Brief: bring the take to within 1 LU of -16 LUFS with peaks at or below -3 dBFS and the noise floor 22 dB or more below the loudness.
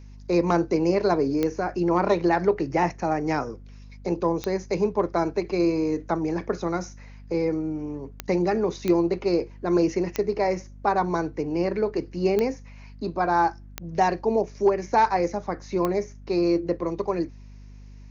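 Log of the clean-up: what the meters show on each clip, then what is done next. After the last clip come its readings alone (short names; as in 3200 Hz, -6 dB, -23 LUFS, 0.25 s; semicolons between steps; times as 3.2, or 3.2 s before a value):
clicks 8; hum 50 Hz; harmonics up to 250 Hz; hum level -41 dBFS; loudness -25.0 LUFS; peak -8.5 dBFS; loudness target -16.0 LUFS
-> de-click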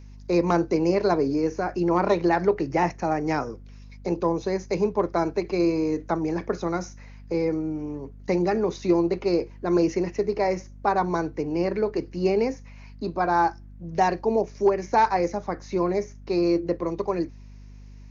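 clicks 0; hum 50 Hz; harmonics up to 250 Hz; hum level -41 dBFS
-> de-hum 50 Hz, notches 5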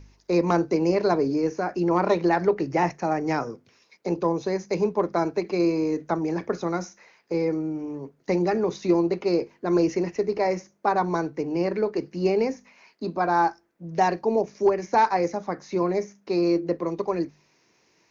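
hum none; loudness -25.0 LUFS; peak -10.0 dBFS; loudness target -16.0 LUFS
-> gain +9 dB; limiter -3 dBFS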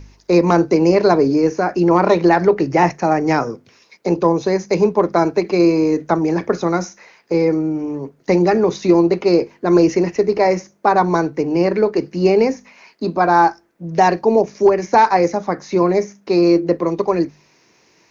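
loudness -16.5 LUFS; peak -3.0 dBFS; noise floor -56 dBFS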